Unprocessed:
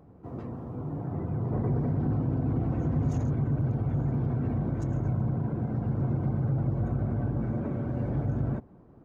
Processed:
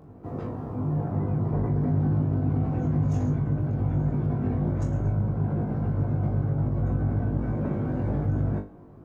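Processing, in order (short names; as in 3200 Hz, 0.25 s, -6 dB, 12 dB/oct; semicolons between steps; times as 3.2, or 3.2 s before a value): compressor, threshold -28 dBFS, peak gain reduction 6 dB; on a send: flutter echo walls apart 3.4 m, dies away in 0.27 s; on the sum: gain +4 dB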